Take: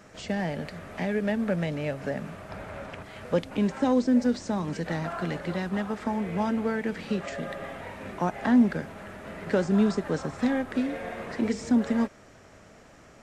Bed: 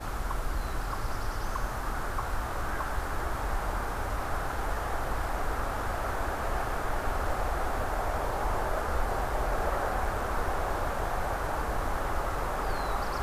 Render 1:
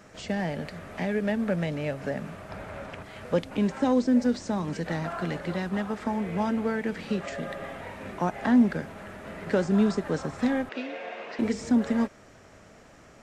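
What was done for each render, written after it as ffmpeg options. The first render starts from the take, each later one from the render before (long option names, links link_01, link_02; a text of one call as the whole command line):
ffmpeg -i in.wav -filter_complex "[0:a]asettb=1/sr,asplit=3[link_01][link_02][link_03];[link_01]atrim=end=10.694[link_04];[link_02]atrim=start=10.69:end=11.39,asetpts=PTS-STARTPTS,afade=type=in:duration=0.004:curve=qsin,afade=type=out:start_time=0.696:duration=0.004:curve=qsin,highpass=430,equalizer=frequency=1200:width_type=q:width=4:gain=-3,equalizer=frequency=1800:width_type=q:width=4:gain=-3,equalizer=frequency=2700:width_type=q:width=4:gain=7,lowpass=frequency=5800:width=0.5412,lowpass=frequency=5800:width=1.3066[link_05];[link_03]atrim=start=11.386[link_06];[link_04][link_05]acrossfade=duration=0.004:curve1=hsin:curve2=qsin[link_07];[link_07][link_06]acrossfade=duration=0.004:curve1=qsin:curve2=hsin" out.wav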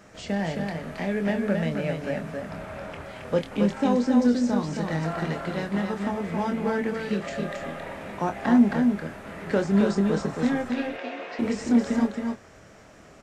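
ffmpeg -i in.wav -filter_complex "[0:a]asplit=2[link_01][link_02];[link_02]adelay=25,volume=-7dB[link_03];[link_01][link_03]amix=inputs=2:normalize=0,aecho=1:1:271:0.596" out.wav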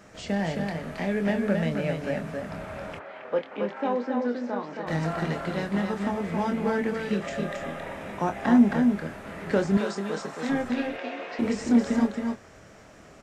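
ffmpeg -i in.wav -filter_complex "[0:a]asplit=3[link_01][link_02][link_03];[link_01]afade=type=out:start_time=2.98:duration=0.02[link_04];[link_02]highpass=410,lowpass=2300,afade=type=in:start_time=2.98:duration=0.02,afade=type=out:start_time=4.86:duration=0.02[link_05];[link_03]afade=type=in:start_time=4.86:duration=0.02[link_06];[link_04][link_05][link_06]amix=inputs=3:normalize=0,asettb=1/sr,asplit=3[link_07][link_08][link_09];[link_07]atrim=end=6.984[link_10];[link_08]atrim=start=6.98:end=8.92,asetpts=PTS-STARTPTS,afade=type=in:duration=0.004:curve=qsin,afade=type=out:start_time=1.936:duration=0.004:curve=qsin,bandreject=frequency=4400:width=12[link_11];[link_09]atrim=start=8.916[link_12];[link_10][link_11]acrossfade=duration=0.004:curve1=hsin:curve2=qsin[link_13];[link_13][link_12]acrossfade=duration=0.004:curve1=qsin:curve2=hsin,asettb=1/sr,asplit=3[link_14][link_15][link_16];[link_14]atrim=end=9.774[link_17];[link_15]atrim=start=9.77:end=10.49,asetpts=PTS-STARTPTS,afade=type=in:duration=0.004:curve=qsin,afade=type=out:start_time=0.716:duration=0.004:curve=qsin,highpass=frequency=650:poles=1[link_18];[link_16]atrim=start=10.486[link_19];[link_17][link_18]acrossfade=duration=0.004:curve1=hsin:curve2=qsin[link_20];[link_20][link_19]acrossfade=duration=0.004:curve1=qsin:curve2=hsin" out.wav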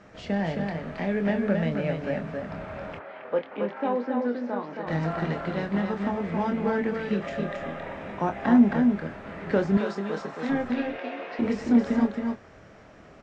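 ffmpeg -i in.wav -af "lowpass=5800,aemphasis=mode=reproduction:type=cd" out.wav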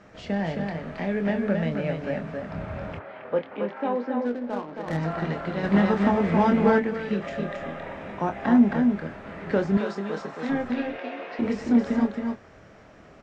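ffmpeg -i in.wav -filter_complex "[0:a]asettb=1/sr,asplit=3[link_01][link_02][link_03];[link_01]atrim=end=2.554[link_04];[link_02]atrim=start=2.55:end=3.56,asetpts=PTS-STARTPTS,afade=type=in:duration=0.004:curve=qsin,afade=type=out:start_time=1.006:duration=0.004:curve=qsin,equalizer=frequency=90:width_type=o:width=2.2:gain=9.5[link_05];[link_03]atrim=start=3.556[link_06];[link_04][link_05]acrossfade=duration=0.004:curve1=hsin:curve2=qsin[link_07];[link_07][link_06]acrossfade=duration=0.004:curve1=qsin:curve2=hsin,asettb=1/sr,asplit=3[link_08][link_09][link_10];[link_08]atrim=end=4.254[link_11];[link_09]atrim=start=4.25:end=4.98,asetpts=PTS-STARTPTS,afade=type=in:duration=0.004:curve=qsin,afade=type=out:start_time=0.726:duration=0.004:curve=qsin,adynamicsmooth=sensitivity=6.5:basefreq=820[link_12];[link_10]atrim=start=4.976[link_13];[link_11][link_12]acrossfade=duration=0.004:curve1=hsin:curve2=qsin[link_14];[link_14][link_13]acrossfade=duration=0.004:curve1=qsin:curve2=hsin,asplit=3[link_15][link_16][link_17];[link_15]afade=type=out:start_time=5.63:duration=0.02[link_18];[link_16]acontrast=78,afade=type=in:start_time=5.63:duration=0.02,afade=type=out:start_time=6.78:duration=0.02[link_19];[link_17]afade=type=in:start_time=6.78:duration=0.02[link_20];[link_18][link_19][link_20]amix=inputs=3:normalize=0" out.wav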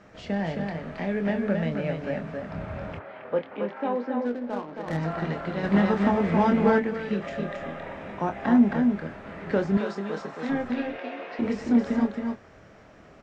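ffmpeg -i in.wav -af "volume=-1dB" out.wav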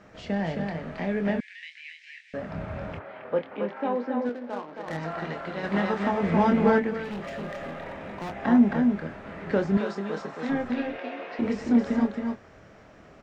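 ffmpeg -i in.wav -filter_complex "[0:a]asettb=1/sr,asplit=3[link_01][link_02][link_03];[link_01]atrim=end=1.404[link_04];[link_02]atrim=start=1.4:end=2.34,asetpts=PTS-STARTPTS,afade=type=in:duration=0.004:curve=qsin,afade=type=out:start_time=0.936:duration=0.004:curve=qsin,asuperpass=centerf=4400:order=20:qfactor=0.58[link_05];[link_03]atrim=start=2.336[link_06];[link_04][link_05]acrossfade=duration=0.004:curve1=hsin:curve2=qsin[link_07];[link_07][link_06]acrossfade=duration=0.004:curve1=qsin:curve2=hsin,asettb=1/sr,asplit=3[link_08][link_09][link_10];[link_08]atrim=end=4.294[link_11];[link_09]atrim=start=4.29:end=6.23,asetpts=PTS-STARTPTS,afade=type=in:duration=0.004:curve=qsin,afade=type=out:start_time=1.936:duration=0.004:curve=qsin,lowshelf=frequency=280:gain=-9.5[link_12];[link_10]atrim=start=6.226[link_13];[link_11][link_12]acrossfade=duration=0.004:curve1=hsin:curve2=qsin[link_14];[link_14][link_13]acrossfade=duration=0.004:curve1=qsin:curve2=hsin,asettb=1/sr,asplit=3[link_15][link_16][link_17];[link_15]atrim=end=7.044[link_18];[link_16]atrim=start=7.04:end=8.36,asetpts=PTS-STARTPTS,afade=type=in:duration=0.004:curve=qsin,afade=type=out:start_time=1.316:duration=0.004:curve=qsin,asoftclip=type=hard:threshold=-31.5dB[link_19];[link_17]atrim=start=8.356[link_20];[link_18][link_19]acrossfade=duration=0.004:curve1=hsin:curve2=qsin[link_21];[link_21][link_20]acrossfade=duration=0.004:curve1=qsin:curve2=hsin" out.wav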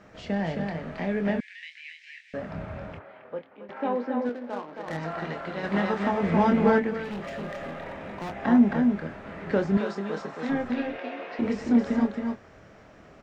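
ffmpeg -i in.wav -filter_complex "[0:a]asplit=2[link_01][link_02];[link_01]atrim=end=3.69,asetpts=PTS-STARTPTS,afade=type=out:start_time=2.38:duration=1.31:silence=0.133352[link_03];[link_02]atrim=start=3.69,asetpts=PTS-STARTPTS,afade=type=in:duration=0.004:curve=hsin:silence=0.133352[link_04];[link_03][link_04]concat=n=2:v=0:a=1" out.wav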